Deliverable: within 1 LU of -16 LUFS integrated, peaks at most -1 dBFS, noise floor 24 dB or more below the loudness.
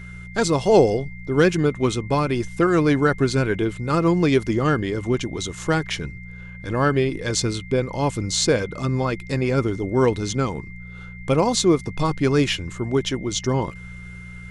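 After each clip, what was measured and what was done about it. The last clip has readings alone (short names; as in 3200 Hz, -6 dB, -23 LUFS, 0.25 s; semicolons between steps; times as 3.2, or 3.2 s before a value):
hum 60 Hz; harmonics up to 180 Hz; hum level -37 dBFS; steady tone 2100 Hz; tone level -41 dBFS; loudness -21.5 LUFS; peak -4.5 dBFS; loudness target -16.0 LUFS
-> de-hum 60 Hz, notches 3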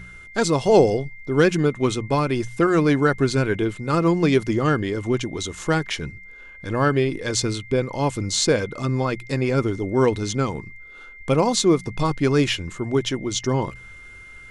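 hum none; steady tone 2100 Hz; tone level -41 dBFS
-> notch 2100 Hz, Q 30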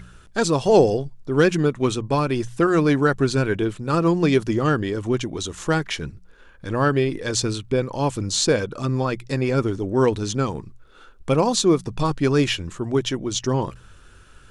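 steady tone none; loudness -21.5 LUFS; peak -4.0 dBFS; loudness target -16.0 LUFS
-> gain +5.5 dB; limiter -1 dBFS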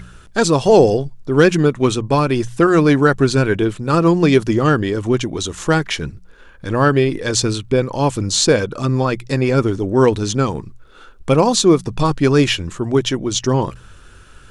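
loudness -16.5 LUFS; peak -1.0 dBFS; noise floor -43 dBFS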